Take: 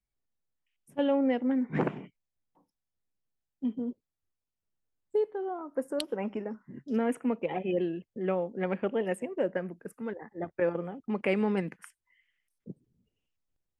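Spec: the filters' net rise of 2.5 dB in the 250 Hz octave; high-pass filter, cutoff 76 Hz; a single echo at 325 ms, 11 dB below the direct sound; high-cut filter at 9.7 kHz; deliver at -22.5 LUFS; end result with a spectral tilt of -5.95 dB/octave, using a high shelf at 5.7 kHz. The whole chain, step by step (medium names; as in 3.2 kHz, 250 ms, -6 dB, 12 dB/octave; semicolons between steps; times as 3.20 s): high-pass 76 Hz; low-pass 9.7 kHz; peaking EQ 250 Hz +3 dB; treble shelf 5.7 kHz +7 dB; delay 325 ms -11 dB; trim +8 dB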